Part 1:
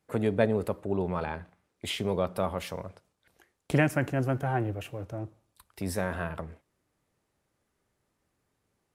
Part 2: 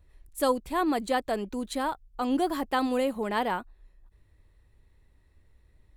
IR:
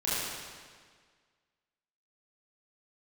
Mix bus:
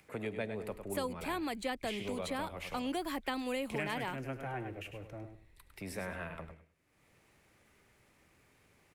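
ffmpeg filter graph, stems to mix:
-filter_complex "[0:a]acompressor=mode=upward:threshold=-44dB:ratio=2.5,volume=-9dB,asplit=2[link_01][link_02];[link_02]volume=-9.5dB[link_03];[1:a]adelay=550,volume=-2.5dB[link_04];[link_03]aecho=0:1:102|204|306:1|0.21|0.0441[link_05];[link_01][link_04][link_05]amix=inputs=3:normalize=0,equalizer=frequency=2300:width=2:gain=9.5,acrossover=split=180|370|3000[link_06][link_07][link_08][link_09];[link_06]acompressor=threshold=-48dB:ratio=4[link_10];[link_07]acompressor=threshold=-44dB:ratio=4[link_11];[link_08]acompressor=threshold=-38dB:ratio=4[link_12];[link_09]acompressor=threshold=-45dB:ratio=4[link_13];[link_10][link_11][link_12][link_13]amix=inputs=4:normalize=0"

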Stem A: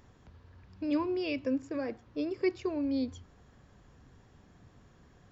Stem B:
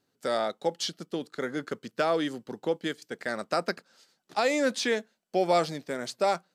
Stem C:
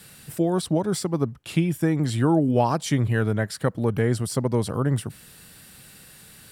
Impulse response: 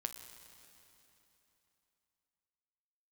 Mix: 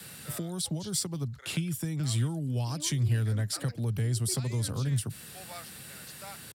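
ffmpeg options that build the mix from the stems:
-filter_complex "[0:a]adelay=1850,volume=-13dB[link_01];[1:a]highpass=1100,volume=-13.5dB[link_02];[2:a]acrossover=split=130|3000[link_03][link_04][link_05];[link_04]acompressor=threshold=-33dB:ratio=6[link_06];[link_03][link_06][link_05]amix=inputs=3:normalize=0,volume=2dB[link_07];[link_01][link_02][link_07]amix=inputs=3:normalize=0,highpass=74,acrossover=split=160|3000[link_08][link_09][link_10];[link_09]acompressor=threshold=-39dB:ratio=3[link_11];[link_08][link_11][link_10]amix=inputs=3:normalize=0"

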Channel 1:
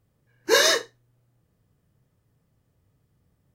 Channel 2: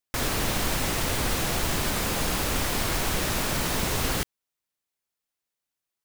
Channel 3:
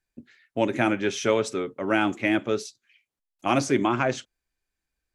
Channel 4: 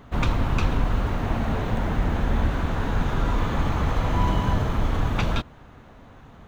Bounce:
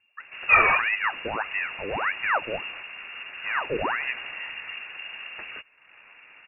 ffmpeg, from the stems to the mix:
ffmpeg -i stem1.wav -i stem2.wav -i stem3.wav -i stem4.wav -filter_complex "[0:a]volume=2.5dB[link_01];[1:a]adelay=900,volume=-13dB[link_02];[2:a]alimiter=limit=-13dB:level=0:latency=1:release=193,lowshelf=frequency=490:width_type=q:width=1.5:gain=11.5,aeval=exprs='val(0)*sin(2*PI*1700*n/s+1700*0.65/1.6*sin(2*PI*1.6*n/s))':channel_layout=same,volume=-9dB,asplit=2[link_03][link_04];[3:a]acompressor=mode=upward:threshold=-24dB:ratio=2.5,aeval=exprs='abs(val(0))':channel_layout=same,adelay=200,volume=-10dB[link_05];[link_04]apad=whole_len=306241[link_06];[link_02][link_06]sidechaingate=range=-33dB:threshold=-57dB:ratio=16:detection=peak[link_07];[link_01][link_07][link_03][link_05]amix=inputs=4:normalize=0,highpass=86,lowpass=frequency=2500:width_type=q:width=0.5098,lowpass=frequency=2500:width_type=q:width=0.6013,lowpass=frequency=2500:width_type=q:width=0.9,lowpass=frequency=2500:width_type=q:width=2.563,afreqshift=-2900" out.wav

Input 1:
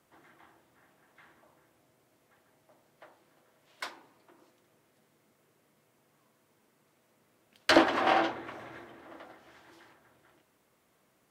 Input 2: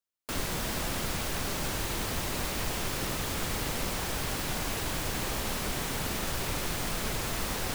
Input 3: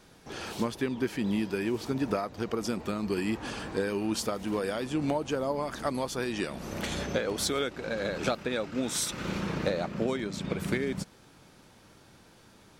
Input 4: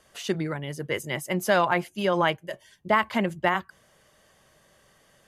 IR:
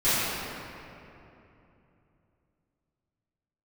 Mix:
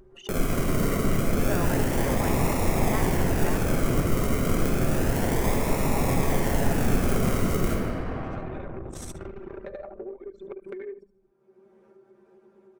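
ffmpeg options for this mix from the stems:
-filter_complex "[0:a]volume=-7.5dB,asplit=2[link_01][link_02];[link_02]volume=-23.5dB[link_03];[1:a]acrusher=samples=40:mix=1:aa=0.000001:lfo=1:lforange=24:lforate=0.3,highshelf=frequency=3300:gain=8,volume=2dB,asplit=2[link_04][link_05];[link_05]volume=-13.5dB[link_06];[2:a]highpass=460,aecho=1:1:5.1:0.85,volume=-12dB,asplit=2[link_07][link_08];[link_08]volume=-8dB[link_09];[3:a]volume=-12.5dB[link_10];[link_01][link_07]amix=inputs=2:normalize=0,equalizer=frequency=380:width_type=o:width=0.23:gain=14,acompressor=threshold=-43dB:ratio=10,volume=0dB[link_11];[4:a]atrim=start_sample=2205[link_12];[link_03][link_06]amix=inputs=2:normalize=0[link_13];[link_13][link_12]afir=irnorm=-1:irlink=0[link_14];[link_09]aecho=0:1:73|146|219|292|365|438:1|0.42|0.176|0.0741|0.0311|0.0131[link_15];[link_04][link_10][link_11][link_14][link_15]amix=inputs=5:normalize=0,anlmdn=0.158,equalizer=frequency=4000:width_type=o:width=1:gain=-10,acompressor=mode=upward:threshold=-27dB:ratio=2.5"

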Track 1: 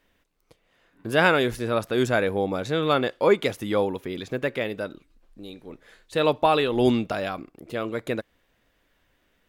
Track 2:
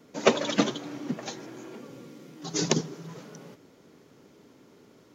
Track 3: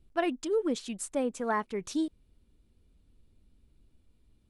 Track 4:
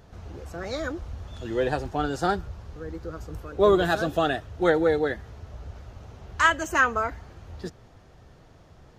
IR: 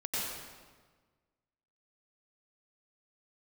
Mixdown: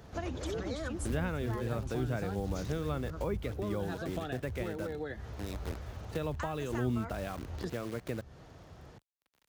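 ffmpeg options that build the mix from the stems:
-filter_complex "[0:a]equalizer=frequency=8200:width=0.63:gain=-14.5,acrusher=bits=7:dc=4:mix=0:aa=0.000001,volume=-1.5dB[link_01];[1:a]alimiter=limit=-16.5dB:level=0:latency=1:release=256,volume=-9dB[link_02];[2:a]volume=-3.5dB[link_03];[3:a]acompressor=threshold=-28dB:ratio=6,volume=0.5dB[link_04];[link_01][link_02][link_03][link_04]amix=inputs=4:normalize=0,highpass=42,acrossover=split=170[link_05][link_06];[link_06]acompressor=threshold=-36dB:ratio=6[link_07];[link_05][link_07]amix=inputs=2:normalize=0"

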